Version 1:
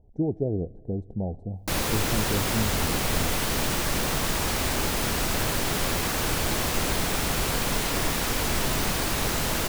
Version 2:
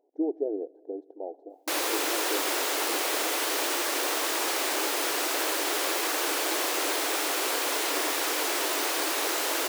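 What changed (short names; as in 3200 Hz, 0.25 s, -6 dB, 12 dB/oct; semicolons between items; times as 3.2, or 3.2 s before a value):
speech: add air absorption 160 m; master: add brick-wall FIR high-pass 280 Hz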